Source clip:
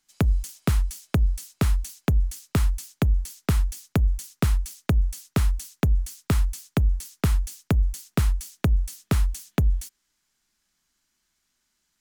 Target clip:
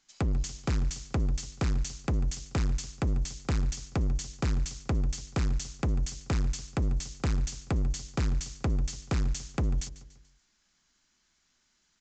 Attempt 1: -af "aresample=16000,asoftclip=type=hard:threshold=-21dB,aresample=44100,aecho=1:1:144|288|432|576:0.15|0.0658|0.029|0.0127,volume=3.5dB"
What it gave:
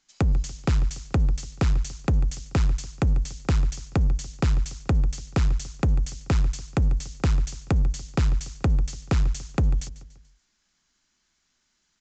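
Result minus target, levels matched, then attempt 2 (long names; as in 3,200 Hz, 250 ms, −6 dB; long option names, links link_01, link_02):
hard clipping: distortion −5 dB
-af "aresample=16000,asoftclip=type=hard:threshold=-28.5dB,aresample=44100,aecho=1:1:144|288|432|576:0.15|0.0658|0.029|0.0127,volume=3.5dB"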